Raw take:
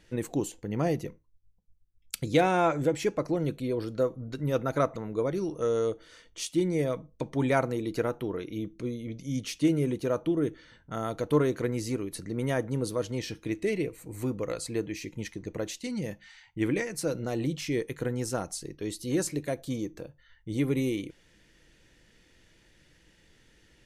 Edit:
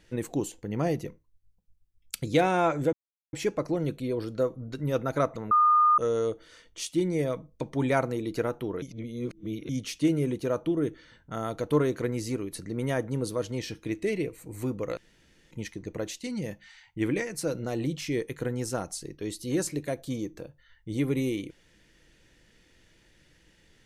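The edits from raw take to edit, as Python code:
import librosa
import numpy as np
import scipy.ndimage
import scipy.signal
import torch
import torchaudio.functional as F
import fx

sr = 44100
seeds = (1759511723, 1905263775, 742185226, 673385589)

y = fx.edit(x, sr, fx.insert_silence(at_s=2.93, length_s=0.4),
    fx.bleep(start_s=5.11, length_s=0.47, hz=1220.0, db=-17.0),
    fx.reverse_span(start_s=8.42, length_s=0.87),
    fx.room_tone_fill(start_s=14.57, length_s=0.54), tone=tone)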